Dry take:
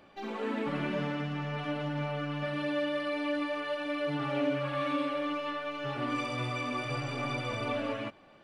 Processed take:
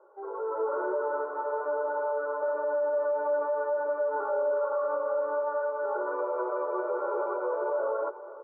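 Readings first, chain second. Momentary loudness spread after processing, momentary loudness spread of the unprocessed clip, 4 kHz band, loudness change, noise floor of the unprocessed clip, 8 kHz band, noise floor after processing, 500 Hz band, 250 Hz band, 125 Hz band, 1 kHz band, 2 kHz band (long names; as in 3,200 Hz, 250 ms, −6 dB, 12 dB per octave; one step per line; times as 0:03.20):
4 LU, 4 LU, below −40 dB, +3.5 dB, −57 dBFS, can't be measured, −43 dBFS, +8.0 dB, −11.0 dB, below −40 dB, +4.5 dB, −3.0 dB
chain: Chebyshev band-pass filter 350–1,400 Hz, order 5
comb filter 2.1 ms, depth 97%
brickwall limiter −30.5 dBFS, peak gain reduction 8.5 dB
automatic gain control gain up to 8.5 dB
repeating echo 483 ms, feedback 56%, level −16 dB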